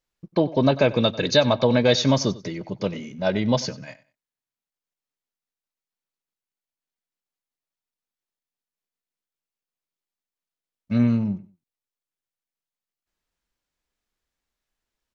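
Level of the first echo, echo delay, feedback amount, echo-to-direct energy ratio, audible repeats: −19.0 dB, 94 ms, 24%, −19.0 dB, 2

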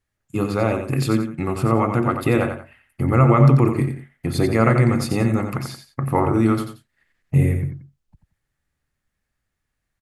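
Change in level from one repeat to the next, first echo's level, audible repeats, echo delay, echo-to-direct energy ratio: −10.5 dB, −7.5 dB, 2, 89 ms, −7.0 dB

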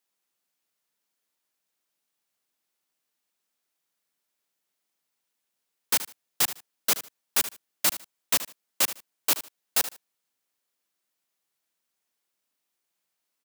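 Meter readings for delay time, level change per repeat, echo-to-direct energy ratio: 76 ms, −13.5 dB, −13.5 dB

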